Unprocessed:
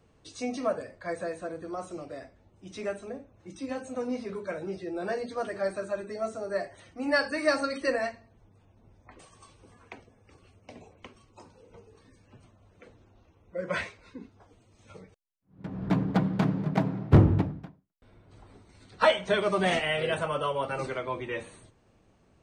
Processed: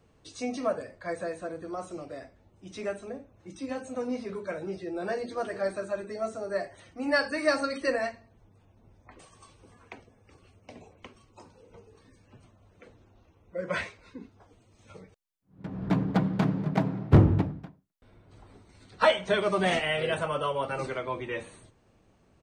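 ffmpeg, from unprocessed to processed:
-filter_complex "[0:a]asplit=2[s0][s1];[s1]afade=t=in:st=4.75:d=0.01,afade=t=out:st=5.33:d=0.01,aecho=0:1:410|820|1230:0.149624|0.0448871|0.0134661[s2];[s0][s2]amix=inputs=2:normalize=0"

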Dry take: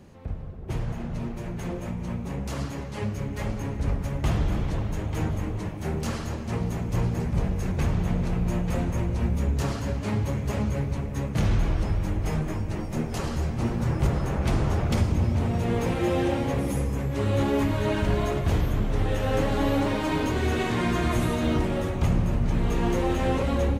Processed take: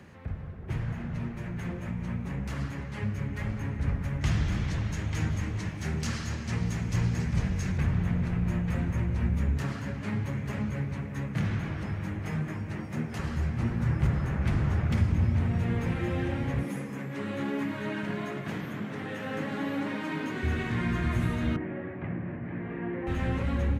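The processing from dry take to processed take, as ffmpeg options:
-filter_complex "[0:a]asettb=1/sr,asplit=3[s0][s1][s2];[s0]atrim=end=4.214[s3];[s1]atrim=start=4.21:end=7.78,asetpts=PTS-STARTPTS,afade=t=in:d=0.004:c=qsin,afade=t=out:st=3.566:d=0.004:c=qsin,equalizer=f=5700:t=o:w=1.8:g=13.5[s4];[s2]atrim=start=7.776[s5];[s3][s4]acrossfade=d=0.004:c1=hsin:c2=qsin[s6];[s6][s5]acrossfade=d=0.004:c1=qsin:c2=hsin,asettb=1/sr,asplit=3[s7][s8][s9];[s7]atrim=end=9.574[s10];[s8]atrim=start=9.57:end=13.19,asetpts=PTS-STARTPTS,afade=t=in:d=0.004:c=qsin,afade=t=out:st=3.616:d=0.004:c=qsin,highpass=120[s11];[s9]atrim=start=13.186[s12];[s10][s11]acrossfade=d=0.004:c1=hsin:c2=qsin[s13];[s13][s12]acrossfade=d=0.004:c1=qsin:c2=hsin,asettb=1/sr,asplit=3[s14][s15][s16];[s14]atrim=end=16.634[s17];[s15]atrim=start=16.63:end=20.43,asetpts=PTS-STARTPTS,afade=t=in:d=0.004:c=qsin,afade=t=out:st=3.796:d=0.004:c=qsin,highpass=f=170:w=0.5412,highpass=f=170:w=1.3066[s18];[s16]atrim=start=20.426[s19];[s17][s18]acrossfade=d=0.004:c1=hsin:c2=qsin[s20];[s20][s19]acrossfade=d=0.004:c1=qsin:c2=hsin,asettb=1/sr,asplit=3[s21][s22][s23];[s21]atrim=end=21.564[s24];[s22]atrim=start=21.56:end=23.07,asetpts=PTS-STARTPTS,afade=t=in:d=0.004:c=qsin,afade=t=out:st=1.506:d=0.004:c=qsin,highpass=220,equalizer=f=220:t=q:w=4:g=-4,equalizer=f=320:t=q:w=4:g=4,equalizer=f=470:t=q:w=4:g=-3,equalizer=f=900:t=q:w=4:g=-6,equalizer=f=1300:t=q:w=4:g=-9,lowpass=f=2000:w=0.5412,lowpass=f=2000:w=1.3066[s25];[s23]atrim=start=23.066[s26];[s24][s25]acrossfade=d=0.004:c1=hsin:c2=qsin[s27];[s27][s26]acrossfade=d=0.004:c1=qsin:c2=hsin,highpass=61,equalizer=f=1800:w=0.97:g=12,acrossover=split=240[s28][s29];[s29]acompressor=threshold=0.001:ratio=1.5[s30];[s28][s30]amix=inputs=2:normalize=0"

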